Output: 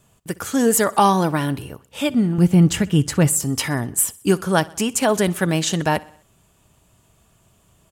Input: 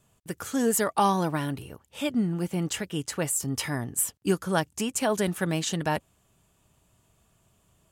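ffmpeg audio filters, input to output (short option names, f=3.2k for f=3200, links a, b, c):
-filter_complex "[0:a]asettb=1/sr,asplit=3[a][b][c];[a]atrim=end=2.384[d];[b]atrim=start=2.38:end=3.28,asetpts=PTS-STARTPTS,afade=t=in:d=0.004:c=qsin,afade=t=out:st=0.896:d=0.004:c=qsin,bass=f=250:g=12,treble=f=4k:g=-1[e];[c]atrim=start=3.276[f];[d][e]acrossfade=d=0.004:c1=hsin:c2=qsin[g];[g][f]acrossfade=d=0.004:c1=qsin:c2=hsin,aecho=1:1:63|126|189|252:0.0794|0.0437|0.024|0.0132,volume=7.5dB"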